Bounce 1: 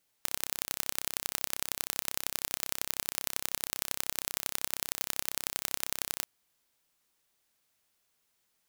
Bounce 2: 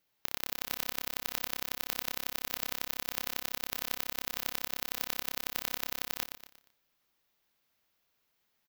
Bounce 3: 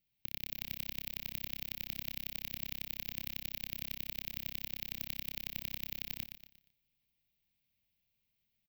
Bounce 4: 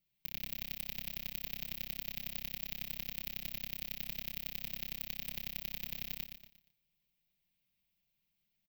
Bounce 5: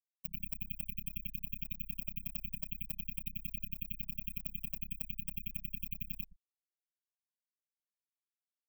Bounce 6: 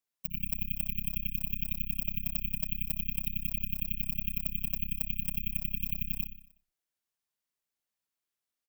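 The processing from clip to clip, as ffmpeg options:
ffmpeg -i in.wav -filter_complex "[0:a]equalizer=frequency=8800:width=1.3:gain=-12.5,asplit=2[link_01][link_02];[link_02]aecho=0:1:118|236|354|472:0.447|0.17|0.0645|0.0245[link_03];[link_01][link_03]amix=inputs=2:normalize=0" out.wav
ffmpeg -i in.wav -af "firequalizer=gain_entry='entry(110,0);entry(220,-5);entry(320,-16);entry(660,-17);entry(1300,-27);entry(2300,-8);entry(10000,-23);entry(15000,-7)':delay=0.05:min_phase=1,volume=4dB" out.wav
ffmpeg -i in.wav -af "aecho=1:1:5.6:0.68,volume=-2dB" out.wav
ffmpeg -i in.wav -af "afftfilt=real='re*gte(hypot(re,im),0.0141)':imag='im*gte(hypot(re,im),0.0141)':win_size=1024:overlap=0.75,volume=7dB" out.wav
ffmpeg -i in.wav -af "aecho=1:1:61|122|183|244|305|366:0.282|0.149|0.0792|0.042|0.0222|0.0118,volume=5.5dB" out.wav

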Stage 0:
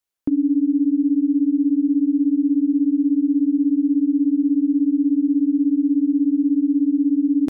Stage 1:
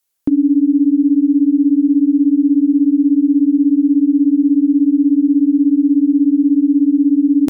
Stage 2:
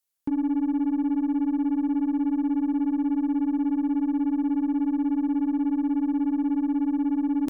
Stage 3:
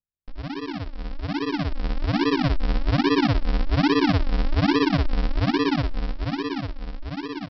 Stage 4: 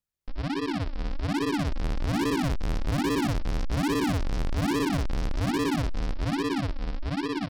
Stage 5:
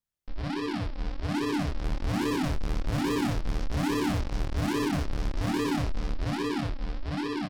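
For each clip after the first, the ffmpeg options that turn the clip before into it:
ffmpeg -i in.wav -af "aemphasis=mode=production:type=cd,volume=6dB" out.wav
ffmpeg -i in.wav -af "aeval=exprs='0.501*(cos(1*acos(clip(val(0)/0.501,-1,1)))-cos(1*PI/2))+0.0224*(cos(3*acos(clip(val(0)/0.501,-1,1)))-cos(3*PI/2))+0.00708*(cos(6*acos(clip(val(0)/0.501,-1,1)))-cos(6*PI/2))+0.0141*(cos(8*acos(clip(val(0)/0.501,-1,1)))-cos(8*PI/2))':channel_layout=same,asoftclip=type=tanh:threshold=-12dB,volume=-8dB" out.wav
ffmpeg -i in.wav -af "dynaudnorm=framelen=210:gausssize=17:maxgain=12.5dB,aresample=11025,acrusher=samples=30:mix=1:aa=0.000001:lfo=1:lforange=30:lforate=1.2,aresample=44100,volume=-7.5dB" out.wav
ffmpeg -i in.wav -af "asoftclip=type=tanh:threshold=-28dB,volume=4dB" out.wav
ffmpeg -i in.wav -filter_complex "[0:a]asplit=2[link_01][link_02];[link_02]adelay=27,volume=-3dB[link_03];[link_01][link_03]amix=inputs=2:normalize=0,volume=-3.5dB" out.wav

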